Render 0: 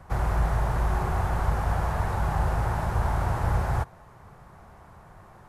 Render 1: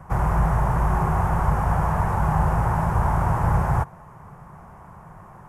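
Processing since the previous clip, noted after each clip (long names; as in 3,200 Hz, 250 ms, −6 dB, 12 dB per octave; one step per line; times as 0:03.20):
graphic EQ with 15 bands 160 Hz +8 dB, 1,000 Hz +6 dB, 4,000 Hz −12 dB
level +2.5 dB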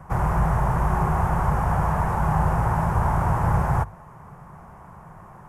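mains-hum notches 50/100 Hz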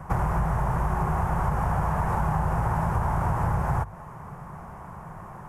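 downward compressor, threshold −25 dBFS, peak gain reduction 9 dB
level +3.5 dB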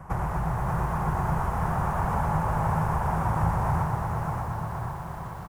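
on a send: bouncing-ball delay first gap 580 ms, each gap 0.85×, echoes 5
on the sum: feedback echo at a low word length 121 ms, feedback 80%, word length 8 bits, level −8 dB
level −3.5 dB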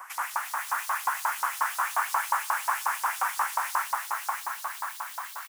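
auto-filter high-pass saw up 5.6 Hz 900–4,900 Hz
spectral tilt +4 dB per octave
level +1.5 dB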